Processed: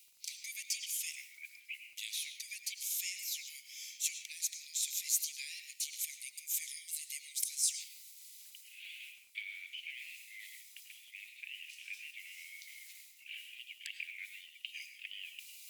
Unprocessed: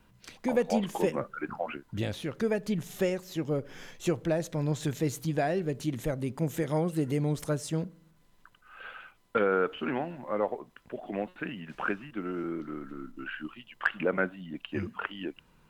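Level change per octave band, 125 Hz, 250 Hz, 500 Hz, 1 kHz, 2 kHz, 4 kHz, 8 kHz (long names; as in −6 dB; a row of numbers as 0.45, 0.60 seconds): below −40 dB, below −40 dB, below −40 dB, below −40 dB, −8.5 dB, +3.5 dB, +10.5 dB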